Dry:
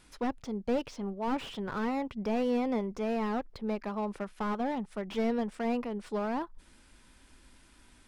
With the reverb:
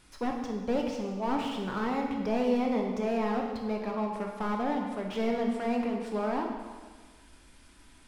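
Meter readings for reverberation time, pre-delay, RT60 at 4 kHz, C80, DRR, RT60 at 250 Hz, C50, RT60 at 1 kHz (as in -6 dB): 1.5 s, 8 ms, 1.4 s, 5.5 dB, 1.0 dB, 1.5 s, 3.0 dB, 1.5 s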